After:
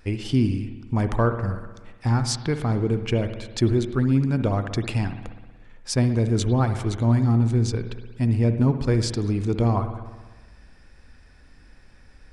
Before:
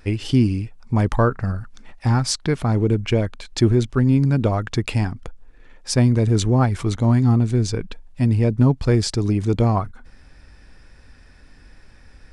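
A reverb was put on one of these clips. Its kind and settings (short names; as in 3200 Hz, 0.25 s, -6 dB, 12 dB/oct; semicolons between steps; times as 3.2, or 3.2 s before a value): spring tank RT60 1.3 s, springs 60 ms, chirp 50 ms, DRR 8.5 dB; gain -4 dB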